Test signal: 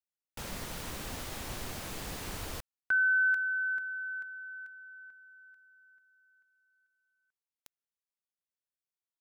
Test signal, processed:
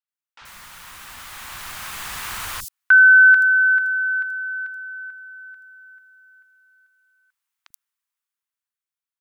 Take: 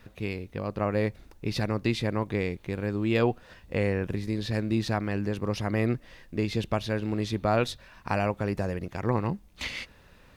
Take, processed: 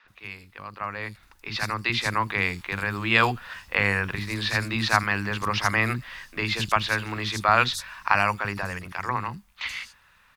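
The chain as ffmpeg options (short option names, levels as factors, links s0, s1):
-filter_complex "[0:a]lowshelf=f=770:t=q:w=1.5:g=-12.5,dynaudnorm=f=270:g=13:m=5.01,acrossover=split=300|5100[s0][s1][s2];[s0]adelay=40[s3];[s2]adelay=80[s4];[s3][s1][s4]amix=inputs=3:normalize=0"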